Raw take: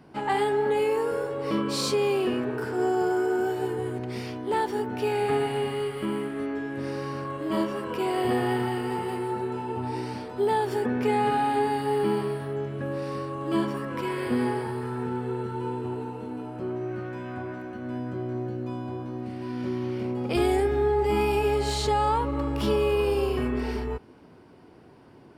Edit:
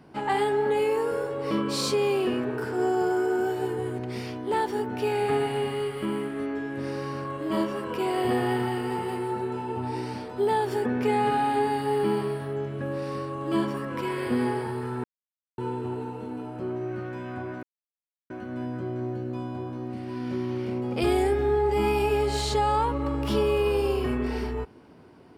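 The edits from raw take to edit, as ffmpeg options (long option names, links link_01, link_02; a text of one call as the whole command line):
ffmpeg -i in.wav -filter_complex "[0:a]asplit=4[link_01][link_02][link_03][link_04];[link_01]atrim=end=15.04,asetpts=PTS-STARTPTS,afade=type=out:start_time=15.036:duration=0.004:curve=hsin[link_05];[link_02]atrim=start=15.04:end=15.58,asetpts=PTS-STARTPTS,volume=0[link_06];[link_03]atrim=start=15.58:end=17.63,asetpts=PTS-STARTPTS,afade=type=in:duration=0.004:curve=hsin,afade=type=out:start_time=2.046:duration=0.004:curve=hsin,apad=pad_dur=0.67[link_07];[link_04]atrim=start=17.63,asetpts=PTS-STARTPTS,afade=type=in:duration=0.004:curve=hsin[link_08];[link_05][link_06][link_07][link_08]concat=n=4:v=0:a=1" out.wav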